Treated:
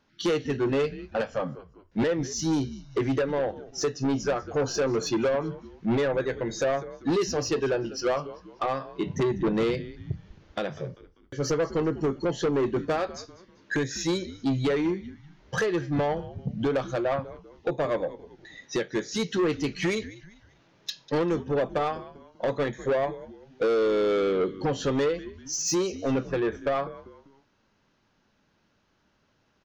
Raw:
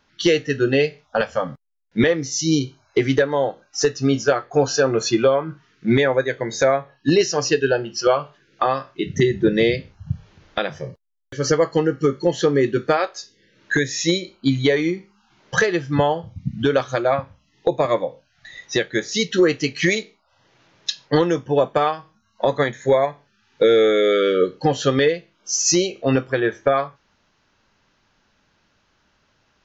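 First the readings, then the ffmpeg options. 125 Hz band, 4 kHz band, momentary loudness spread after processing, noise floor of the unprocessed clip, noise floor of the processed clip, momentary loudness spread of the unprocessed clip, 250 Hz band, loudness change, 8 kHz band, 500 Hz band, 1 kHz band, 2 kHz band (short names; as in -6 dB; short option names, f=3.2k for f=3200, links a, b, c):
-7.0 dB, -10.5 dB, 11 LU, -65 dBFS, -69 dBFS, 10 LU, -6.5 dB, -8.0 dB, n/a, -7.5 dB, -8.0 dB, -10.5 dB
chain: -filter_complex "[0:a]equalizer=f=250:w=0.39:g=6.5,asplit=4[a][b][c][d];[b]adelay=196,afreqshift=-91,volume=-20dB[e];[c]adelay=392,afreqshift=-182,volume=-28.2dB[f];[d]adelay=588,afreqshift=-273,volume=-36.4dB[g];[a][e][f][g]amix=inputs=4:normalize=0,asoftclip=type=tanh:threshold=-12.5dB,volume=-8dB"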